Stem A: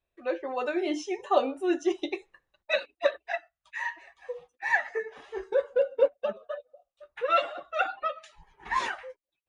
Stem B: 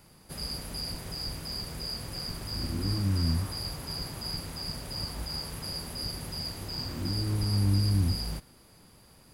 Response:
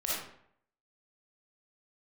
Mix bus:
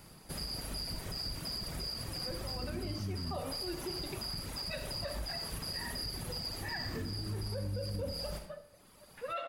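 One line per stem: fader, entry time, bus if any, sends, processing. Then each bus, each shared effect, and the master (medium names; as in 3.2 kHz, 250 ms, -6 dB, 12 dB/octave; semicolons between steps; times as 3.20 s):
-13.0 dB, 2.00 s, send -15 dB, none
-0.5 dB, 0.00 s, send -7 dB, reverb removal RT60 1.5 s; compression 3:1, threshold -38 dBFS, peak gain reduction 11 dB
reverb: on, RT60 0.65 s, pre-delay 15 ms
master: peak limiter -29.5 dBFS, peak gain reduction 9.5 dB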